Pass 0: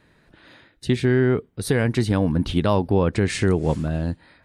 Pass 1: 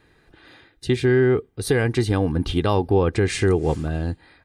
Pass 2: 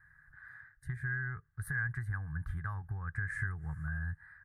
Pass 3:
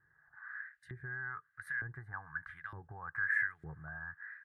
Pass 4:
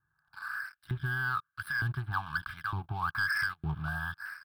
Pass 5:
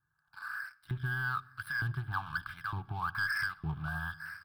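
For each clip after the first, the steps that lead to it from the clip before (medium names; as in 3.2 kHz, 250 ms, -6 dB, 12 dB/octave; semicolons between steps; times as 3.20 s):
comb 2.5 ms, depth 45%
dynamic bell 6 kHz, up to -7 dB, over -47 dBFS, Q 0.74; compression 4:1, threshold -24 dBFS, peak gain reduction 9.5 dB; FFT filter 150 Hz 0 dB, 240 Hz -25 dB, 500 Hz -29 dB, 1.7 kHz +12 dB, 2.7 kHz -30 dB, 4.1 kHz -26 dB, 11 kHz -4 dB; trim -7 dB
LFO band-pass saw up 1.1 Hz 350–3600 Hz; trim +9.5 dB
waveshaping leveller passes 3; static phaser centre 1.9 kHz, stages 6; trim +3.5 dB
delay 912 ms -22.5 dB; simulated room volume 3500 m³, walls furnished, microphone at 0.4 m; trim -2.5 dB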